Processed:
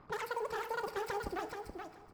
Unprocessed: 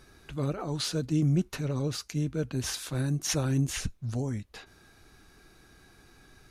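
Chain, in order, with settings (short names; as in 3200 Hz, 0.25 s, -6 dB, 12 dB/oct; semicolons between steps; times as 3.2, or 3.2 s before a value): median filter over 41 samples; in parallel at -6 dB: soft clip -33 dBFS, distortion -7 dB; on the sum: low-pass opened by the level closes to 640 Hz, open at -24 dBFS; tone controls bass -6 dB, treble +2 dB; compressor, threshold -34 dBFS, peak gain reduction 10 dB; reverb removal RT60 1.8 s; wide varispeed 3.04×; feedback echo 0.427 s, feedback 15%, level -6 dB; FDN reverb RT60 1.1 s, low-frequency decay 0.8×, high-frequency decay 1×, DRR 9 dB; gain +1 dB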